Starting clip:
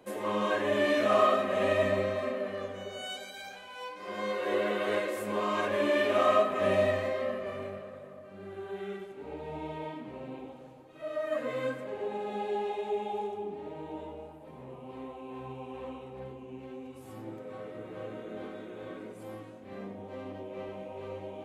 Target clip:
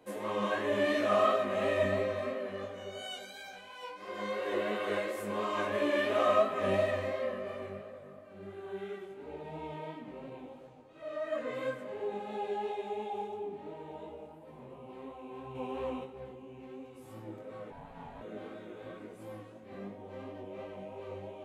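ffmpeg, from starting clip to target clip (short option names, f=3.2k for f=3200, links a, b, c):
-filter_complex "[0:a]asettb=1/sr,asplit=3[a][b][c];[a]atrim=end=10.674[d];[b]atrim=start=10.67:end=11.54,asetpts=PTS-STARTPTS,afade=t=in:d=0.004:c=qsin,afade=t=out:st=0.866:d=0.004:c=qsin,lowpass=8.7k[e];[c]atrim=start=11.536[f];[d][e]acrossfade=d=0.004:c1=hsin:c2=qsin[g];[g][f]acrossfade=d=0.004:c1=qsin:c2=hsin,asplit=3[h][i][j];[h]afade=t=out:st=15.54:d=0.02[k];[i]acontrast=68,afade=t=in:st=15.54:d=0.02,afade=t=out:st=16.03:d=0.02[l];[j]afade=t=in:st=16.03:d=0.02[m];[k][l][m]amix=inputs=3:normalize=0,asettb=1/sr,asplit=3[n][o][p];[n]atrim=end=17.704[q];[o]atrim=start=17.7:end=18.21,asetpts=PTS-STARTPTS,afade=t=in:d=0.004:c=qsin,afade=t=out:st=0.506:d=0.004:c=qsin,aeval=exprs='val(0)*sin(2*PI*350*n/s)':c=same[r];[p]atrim=start=18.206[s];[q][r]acrossfade=d=0.004:c1=hsin:c2=qsin[t];[t][s]acrossfade=d=0.004:c1=qsin:c2=hsin,flanger=delay=17:depth=3.8:speed=2.9"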